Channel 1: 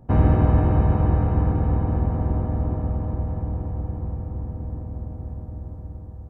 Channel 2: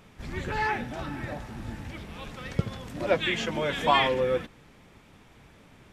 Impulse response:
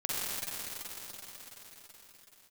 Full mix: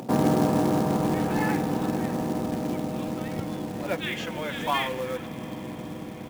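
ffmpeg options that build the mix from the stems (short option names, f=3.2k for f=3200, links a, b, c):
-filter_complex "[0:a]highpass=f=180:w=0.5412,highpass=f=180:w=1.3066,volume=1.5dB,asplit=2[a][b];[b]volume=-21.5dB[c];[1:a]tiltshelf=f=720:g=-6,adelay=800,volume=-5dB,asplit=2[d][e];[e]volume=-23.5dB[f];[2:a]atrim=start_sample=2205[g];[c][f]amix=inputs=2:normalize=0[h];[h][g]afir=irnorm=-1:irlink=0[i];[a][d][i]amix=inputs=3:normalize=0,highshelf=f=2.2k:g=-8,acompressor=mode=upward:threshold=-27dB:ratio=2.5,acrusher=bits=4:mode=log:mix=0:aa=0.000001"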